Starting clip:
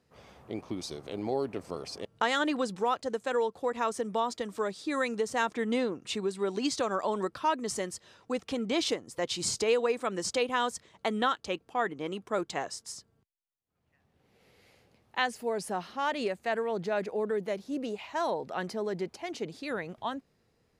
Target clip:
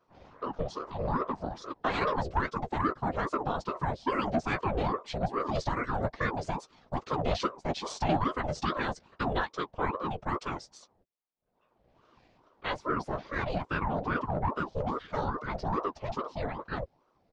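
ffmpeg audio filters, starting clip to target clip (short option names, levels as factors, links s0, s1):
-filter_complex "[0:a]lowpass=f=5700:w=0.5412,lowpass=f=5700:w=1.3066,equalizer=f=310:w=0.89:g=13,afftfilt=real='hypot(re,im)*cos(2*PI*random(0))':imag='hypot(re,im)*sin(2*PI*random(1))':win_size=512:overlap=0.75,acrossover=split=120|580|4200[s0][s1][s2][s3];[s1]asoftclip=type=tanh:threshold=0.0422[s4];[s0][s4][s2][s3]amix=inputs=4:normalize=0,atempo=1.2,asplit=2[s5][s6];[s6]adelay=13,volume=0.282[s7];[s5][s7]amix=inputs=2:normalize=0,aeval=exprs='val(0)*sin(2*PI*530*n/s+530*0.6/2.4*sin(2*PI*2.4*n/s))':c=same,volume=1.41"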